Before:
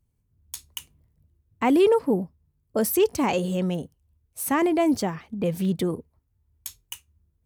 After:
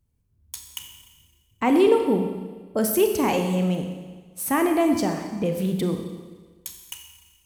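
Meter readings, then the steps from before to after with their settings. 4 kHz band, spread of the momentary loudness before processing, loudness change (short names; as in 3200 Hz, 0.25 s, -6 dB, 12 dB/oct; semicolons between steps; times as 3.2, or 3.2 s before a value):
+1.5 dB, 20 LU, +1.0 dB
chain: Schroeder reverb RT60 1.4 s, combs from 29 ms, DRR 4.5 dB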